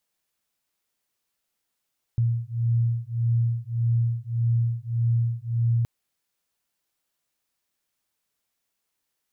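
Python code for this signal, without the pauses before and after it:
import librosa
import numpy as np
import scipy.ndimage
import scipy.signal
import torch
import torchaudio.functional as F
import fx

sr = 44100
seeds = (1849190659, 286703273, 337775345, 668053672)

y = fx.two_tone_beats(sr, length_s=3.67, hz=116.0, beat_hz=1.7, level_db=-24.0)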